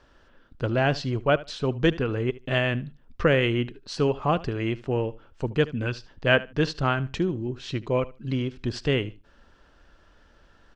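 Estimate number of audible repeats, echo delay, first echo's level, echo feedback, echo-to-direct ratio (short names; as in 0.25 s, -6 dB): 2, 75 ms, -19.0 dB, 17%, -19.0 dB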